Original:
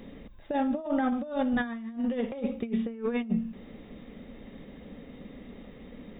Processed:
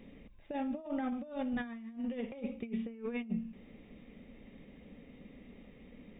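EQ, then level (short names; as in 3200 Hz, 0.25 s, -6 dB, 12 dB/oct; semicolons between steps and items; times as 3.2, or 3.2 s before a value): EQ curve 190 Hz 0 dB, 1600 Hz -4 dB, 2400 Hz +5 dB, 4000 Hz -5 dB; -7.5 dB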